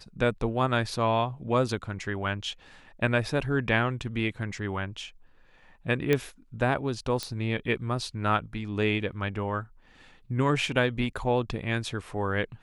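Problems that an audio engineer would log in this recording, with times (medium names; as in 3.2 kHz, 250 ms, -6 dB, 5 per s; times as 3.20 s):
6.13 s: pop -11 dBFS
7.23 s: pop -16 dBFS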